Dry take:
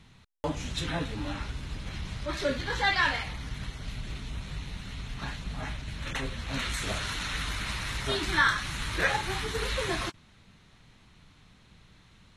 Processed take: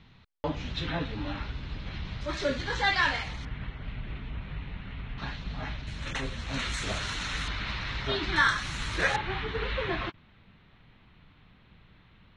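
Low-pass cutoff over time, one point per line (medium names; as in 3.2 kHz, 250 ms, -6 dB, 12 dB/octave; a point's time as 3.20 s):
low-pass 24 dB/octave
4.5 kHz
from 2.21 s 7.4 kHz
from 3.45 s 2.9 kHz
from 5.18 s 4.9 kHz
from 5.87 s 8.2 kHz
from 7.48 s 4.6 kHz
from 8.36 s 8.4 kHz
from 9.16 s 3.4 kHz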